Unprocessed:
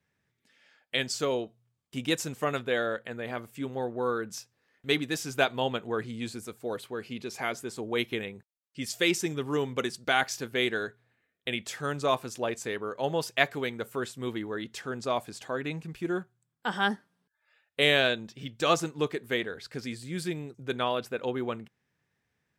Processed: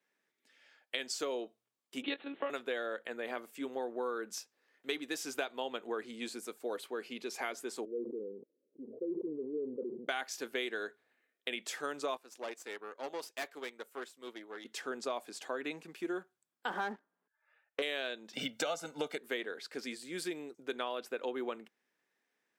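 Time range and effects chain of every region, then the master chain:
2.02–2.5 monotone LPC vocoder at 8 kHz 280 Hz + three-band squash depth 40%
7.85–10.09 steep low-pass 510 Hz 72 dB/oct + low shelf 350 Hz -10 dB + sustainer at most 33 dB/s
12.17–14.65 low shelf 290 Hz -8 dB + tube stage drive 31 dB, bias 0.75 + upward expander, over -46 dBFS
16.7–17.82 LPF 1400 Hz + sample leveller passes 2 + mismatched tape noise reduction encoder only
18.33–19.18 low shelf 410 Hz +5.5 dB + comb 1.4 ms, depth 84% + three-band squash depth 70%
whole clip: HPF 270 Hz 24 dB/oct; compressor 6:1, threshold -31 dBFS; gain -2 dB

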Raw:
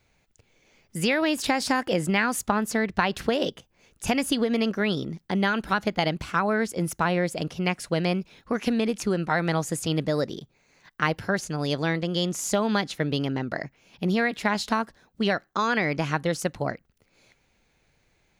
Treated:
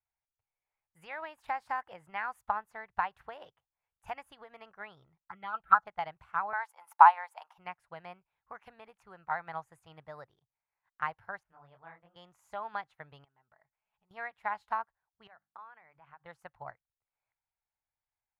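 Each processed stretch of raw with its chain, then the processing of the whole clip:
5.22–5.87 bell 1300 Hz +14 dB 0.34 oct + comb 6 ms, depth 36% + envelope phaser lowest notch 430 Hz, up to 3200 Hz, full sweep at -12.5 dBFS
6.53–7.58 resonant high-pass 880 Hz, resonance Q 5.1 + tilt +2.5 dB/oct
11.43–12.16 air absorption 360 m + detuned doubles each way 48 cents
13.24–14.11 compressor 12:1, threshold -37 dBFS + comb 4.7 ms, depth 38%
15.27–16.26 LPF 3300 Hz + notches 50/100/150/200/250/300 Hz + compressor 8:1, threshold -32 dBFS
whole clip: EQ curve 120 Hz 0 dB, 240 Hz -19 dB, 530 Hz -5 dB, 850 Hz +11 dB, 2000 Hz +2 dB, 5300 Hz -15 dB, 9400 Hz -10 dB, 14000 Hz -5 dB; upward expander 1.5:1, over -51 dBFS; gain -8.5 dB

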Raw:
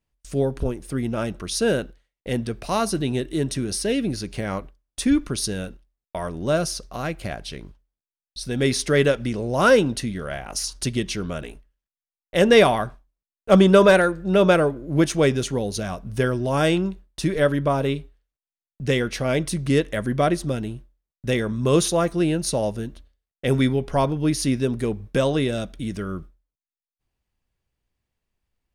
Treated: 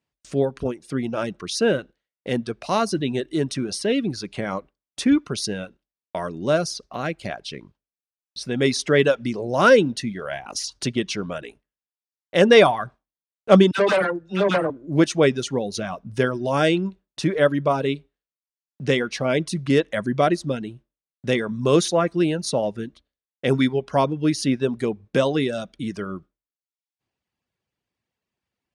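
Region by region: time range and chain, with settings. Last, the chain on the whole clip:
13.71–14.7 dispersion lows, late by 73 ms, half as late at 880 Hz + tube stage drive 15 dB, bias 0.65
whole clip: LPF 6600 Hz 12 dB/oct; reverb removal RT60 0.71 s; HPF 140 Hz 12 dB/oct; gain +2 dB

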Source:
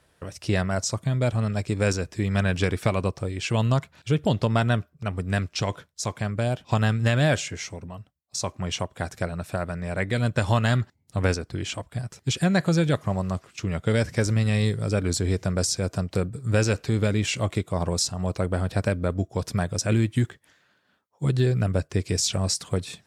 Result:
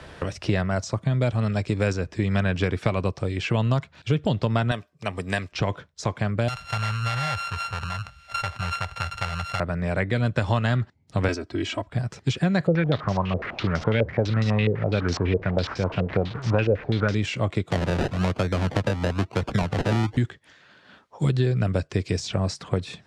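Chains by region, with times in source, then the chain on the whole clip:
4.71–5.52 RIAA curve recording + notch 1400 Hz, Q 5.1
6.48–9.6 sample sorter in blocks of 32 samples + passive tone stack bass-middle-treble 10-0-10 + fast leveller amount 50%
11.28–11.89 Bessel high-pass 170 Hz + bell 1000 Hz -3 dB 2.1 oct + comb 3.1 ms, depth 99%
12.67–17.15 delta modulation 64 kbps, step -33 dBFS + stepped low-pass 12 Hz 510–5500 Hz
17.7–20.17 decimation with a swept rate 32×, swing 60% 1 Hz + three-band squash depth 70%
whole clip: Bessel low-pass 3900 Hz, order 2; three-band squash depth 70%

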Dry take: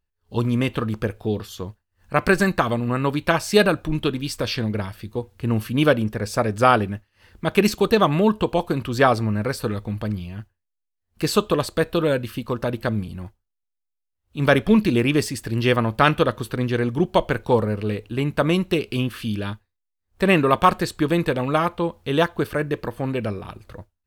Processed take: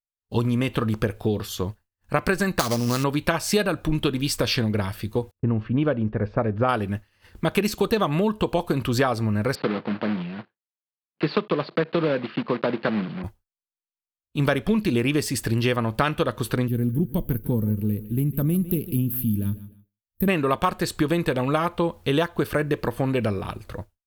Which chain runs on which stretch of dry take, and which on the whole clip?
2.59–3.04 sample-rate reducer 5400 Hz, jitter 20% + bell 5400 Hz +5.5 dB 1.1 oct
5.31–6.69 gate -38 dBFS, range -37 dB + low-pass opened by the level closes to 1000 Hz, open at -13 dBFS + tape spacing loss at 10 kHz 39 dB
9.55–13.24 block floating point 3-bit + Chebyshev band-pass 150–4600 Hz, order 4 + air absorption 280 m
16.68–20.28 EQ curve 230 Hz 0 dB, 740 Hz -22 dB, 6800 Hz -20 dB, 13000 Hz +15 dB + feedback echo 0.151 s, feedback 33%, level -17 dB
whole clip: expander -47 dBFS; compressor 6:1, threshold -23 dBFS; high shelf 11000 Hz +5 dB; gain +4.5 dB

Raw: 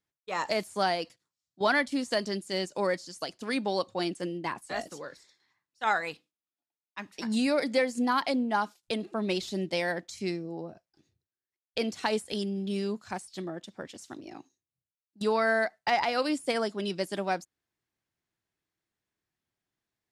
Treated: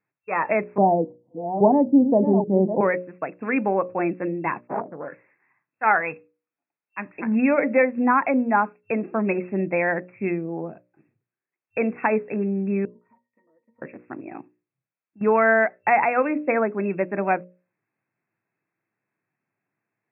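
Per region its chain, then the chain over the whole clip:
0.78–2.81 reverse delay 0.415 s, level -9.5 dB + elliptic low-pass 890 Hz + low shelf 370 Hz +11.5 dB
4.67–5.08 steep low-pass 1200 Hz + Doppler distortion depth 0.64 ms
12.85–13.82 HPF 290 Hz + compressor, threshold -50 dBFS + octave resonator A#, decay 0.14 s
whole clip: FFT band-pass 100–2700 Hz; notches 60/120/180/240/300/360/420/480/540/600 Hz; gain +8 dB

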